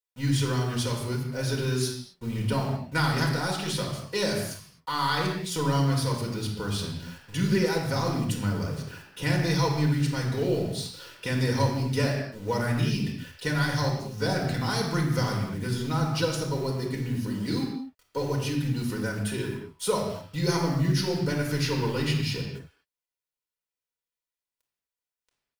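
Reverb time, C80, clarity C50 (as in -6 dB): not exponential, 6.0 dB, 4.0 dB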